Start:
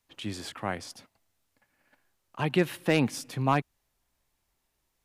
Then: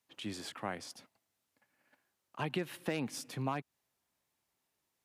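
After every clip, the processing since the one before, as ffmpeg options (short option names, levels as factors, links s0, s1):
-af "highpass=130,acompressor=threshold=0.0447:ratio=6,volume=0.596"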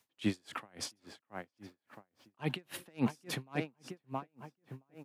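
-filter_complex "[0:a]asplit=2[s0][s1];[s1]adelay=671,lowpass=f=2400:p=1,volume=0.282,asplit=2[s2][s3];[s3]adelay=671,lowpass=f=2400:p=1,volume=0.55,asplit=2[s4][s5];[s5]adelay=671,lowpass=f=2400:p=1,volume=0.55,asplit=2[s6][s7];[s7]adelay=671,lowpass=f=2400:p=1,volume=0.55,asplit=2[s8][s9];[s9]adelay=671,lowpass=f=2400:p=1,volume=0.55,asplit=2[s10][s11];[s11]adelay=671,lowpass=f=2400:p=1,volume=0.55[s12];[s0][s2][s4][s6][s8][s10][s12]amix=inputs=7:normalize=0,aeval=exprs='val(0)*pow(10,-38*(0.5-0.5*cos(2*PI*3.6*n/s))/20)':c=same,volume=3.35"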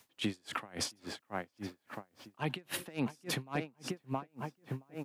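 -af "acompressor=threshold=0.00708:ratio=5,volume=3.16"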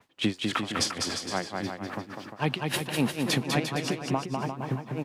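-af "aemphasis=mode=reproduction:type=50kf,aecho=1:1:200|350|462.5|546.9|610.2:0.631|0.398|0.251|0.158|0.1,adynamicequalizer=threshold=0.00178:dfrequency=3300:dqfactor=0.7:tfrequency=3300:tqfactor=0.7:attack=5:release=100:ratio=0.375:range=4:mode=boostabove:tftype=highshelf,volume=2.51"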